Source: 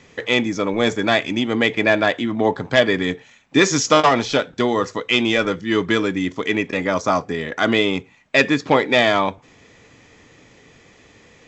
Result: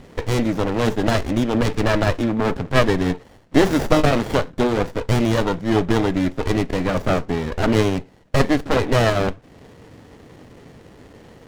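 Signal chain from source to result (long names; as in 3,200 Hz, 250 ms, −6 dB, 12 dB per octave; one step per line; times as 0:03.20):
in parallel at −0.5 dB: downward compressor, threshold −34 dBFS, peak gain reduction 22.5 dB
on the sum: windowed peak hold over 33 samples
level +1.5 dB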